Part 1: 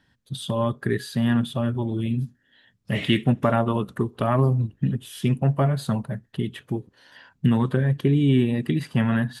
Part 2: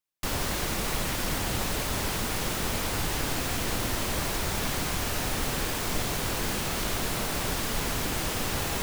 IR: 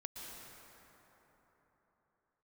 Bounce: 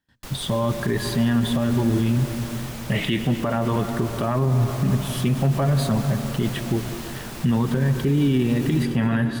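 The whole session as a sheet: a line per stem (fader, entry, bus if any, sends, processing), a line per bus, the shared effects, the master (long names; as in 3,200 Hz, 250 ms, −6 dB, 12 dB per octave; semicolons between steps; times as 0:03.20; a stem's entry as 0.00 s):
+1.0 dB, 0.00 s, send −4 dB, noise gate with hold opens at −54 dBFS
−3.5 dB, 0.00 s, send −7 dB, automatic ducking −12 dB, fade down 0.35 s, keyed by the first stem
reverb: on, RT60 4.1 s, pre-delay 107 ms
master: automatic gain control gain up to 3 dB; brickwall limiter −12.5 dBFS, peak gain reduction 10 dB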